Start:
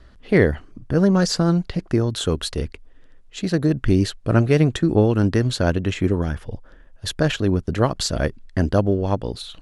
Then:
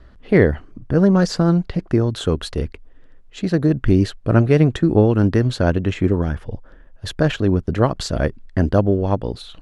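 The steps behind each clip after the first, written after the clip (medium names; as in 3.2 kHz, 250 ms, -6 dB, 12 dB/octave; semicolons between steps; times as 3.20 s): treble shelf 3.3 kHz -9.5 dB; trim +2.5 dB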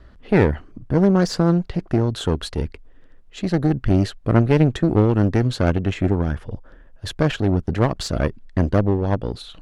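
single-diode clipper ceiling -18.5 dBFS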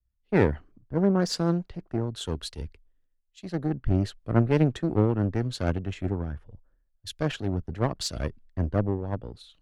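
three bands expanded up and down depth 100%; trim -8.5 dB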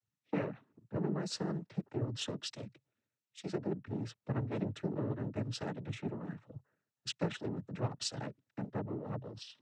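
compression 4:1, threshold -35 dBFS, peak gain reduction 16.5 dB; noise-vocoded speech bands 12; trim +1 dB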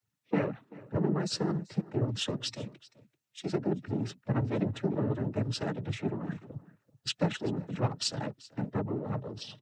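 coarse spectral quantiser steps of 15 dB; delay 386 ms -20.5 dB; trim +6.5 dB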